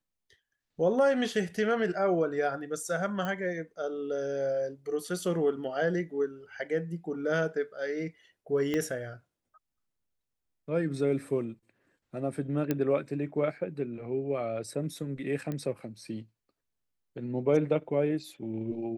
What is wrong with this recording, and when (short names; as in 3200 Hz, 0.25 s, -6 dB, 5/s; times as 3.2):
3.25 pop -21 dBFS
8.74 pop -18 dBFS
12.71 pop -15 dBFS
15.52 pop -23 dBFS